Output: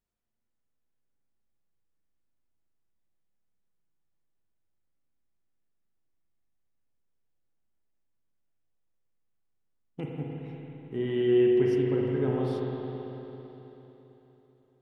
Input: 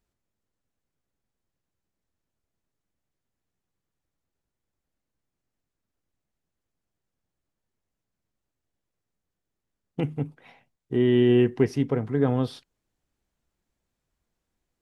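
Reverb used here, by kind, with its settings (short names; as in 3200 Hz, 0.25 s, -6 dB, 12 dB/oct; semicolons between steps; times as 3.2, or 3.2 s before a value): spring tank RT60 3.7 s, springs 38/55 ms, chirp 50 ms, DRR -2.5 dB; gain -9.5 dB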